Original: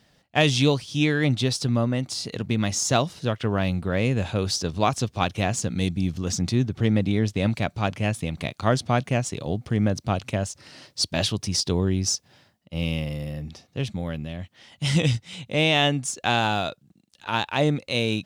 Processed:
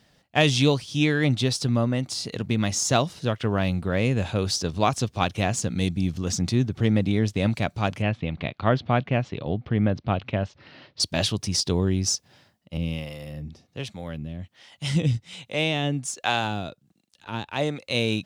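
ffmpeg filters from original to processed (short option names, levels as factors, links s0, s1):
-filter_complex "[0:a]asettb=1/sr,asplit=3[s0][s1][s2];[s0]atrim=end=8.024[s3];[s1]atrim=start=8.02:end=11,asetpts=PTS-STARTPTS,afade=t=in:d=0.004:c=qsin,afade=t=out:st=2.976:d=0.004:c=qsin,lowpass=f=3600:w=0.5412,lowpass=f=3600:w=1.3066[s4];[s2]atrim=start=10.996[s5];[s3][s4]acrossfade=d=0.004:c1=hsin:c2=qsin[s6];[s6][s5]acrossfade=d=0.004:c1=qsin:c2=hsin,asettb=1/sr,asplit=3[s7][s8][s9];[s7]atrim=end=12.774[s10];[s8]atrim=start=12.77:end=17.9,asetpts=PTS-STARTPTS,afade=t=in:d=0.004:c=qsin,afade=t=out:st=5.126:d=0.004:c=qsin,acrossover=split=430[s11][s12];[s11]aeval=exprs='val(0)*(1-0.7/2+0.7/2*cos(2*PI*1.3*n/s))':c=same[s13];[s12]aeval=exprs='val(0)*(1-0.7/2-0.7/2*cos(2*PI*1.3*n/s))':c=same[s14];[s13][s14]amix=inputs=2:normalize=0[s15];[s9]atrim=start=17.896[s16];[s10][s15]acrossfade=d=0.004:c1=hsin:c2=qsin[s17];[s17][s16]acrossfade=d=0.004:c1=qsin:c2=hsin"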